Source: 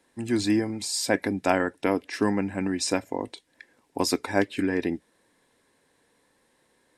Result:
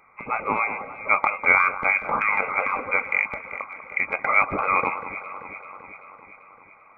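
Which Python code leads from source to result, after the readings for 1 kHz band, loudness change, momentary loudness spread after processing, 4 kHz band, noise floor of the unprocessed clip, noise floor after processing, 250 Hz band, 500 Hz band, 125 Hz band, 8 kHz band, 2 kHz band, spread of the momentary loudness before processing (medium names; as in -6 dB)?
+10.0 dB, +4.5 dB, 17 LU, under -20 dB, -68 dBFS, -52 dBFS, -14.0 dB, -4.0 dB, -9.5 dB, under -30 dB, +12.5 dB, 10 LU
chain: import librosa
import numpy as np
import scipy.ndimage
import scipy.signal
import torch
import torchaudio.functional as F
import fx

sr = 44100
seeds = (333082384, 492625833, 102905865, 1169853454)

p1 = scipy.signal.sosfilt(scipy.signal.butter(4, 580.0, 'highpass', fs=sr, output='sos'), x)
p2 = fx.over_compress(p1, sr, threshold_db=-34.0, ratio=-0.5)
p3 = p1 + (p2 * librosa.db_to_amplitude(-2.0))
p4 = fx.fixed_phaser(p3, sr, hz=1100.0, stages=6)
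p5 = fx.freq_invert(p4, sr, carrier_hz=2900)
p6 = fx.transient(p5, sr, attack_db=-2, sustain_db=4)
p7 = p6 + fx.echo_alternate(p6, sr, ms=194, hz=1500.0, feedback_pct=77, wet_db=-10.5, dry=0)
y = p7 * librosa.db_to_amplitude(9.0)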